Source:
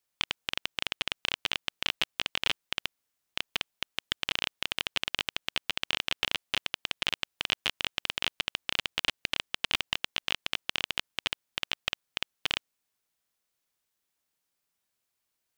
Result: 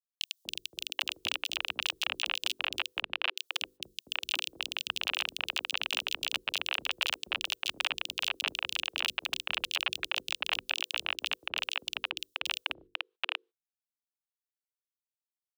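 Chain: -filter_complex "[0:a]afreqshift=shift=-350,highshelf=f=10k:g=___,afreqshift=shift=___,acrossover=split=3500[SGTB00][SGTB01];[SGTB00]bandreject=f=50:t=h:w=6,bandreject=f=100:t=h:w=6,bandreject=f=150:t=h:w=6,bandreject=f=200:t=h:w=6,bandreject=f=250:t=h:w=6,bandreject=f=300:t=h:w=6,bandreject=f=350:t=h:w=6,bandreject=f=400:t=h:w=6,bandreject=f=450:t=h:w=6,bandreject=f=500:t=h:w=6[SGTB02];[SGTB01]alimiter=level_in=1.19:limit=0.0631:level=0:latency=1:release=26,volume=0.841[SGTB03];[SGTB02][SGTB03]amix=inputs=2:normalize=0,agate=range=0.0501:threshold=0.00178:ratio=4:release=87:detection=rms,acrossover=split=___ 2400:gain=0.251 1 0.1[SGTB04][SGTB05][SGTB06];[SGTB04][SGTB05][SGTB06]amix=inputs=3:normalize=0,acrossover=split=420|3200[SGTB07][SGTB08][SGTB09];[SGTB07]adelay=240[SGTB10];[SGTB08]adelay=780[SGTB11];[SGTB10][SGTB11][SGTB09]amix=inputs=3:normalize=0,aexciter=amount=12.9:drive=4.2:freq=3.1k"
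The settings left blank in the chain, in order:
2.5, 31, 360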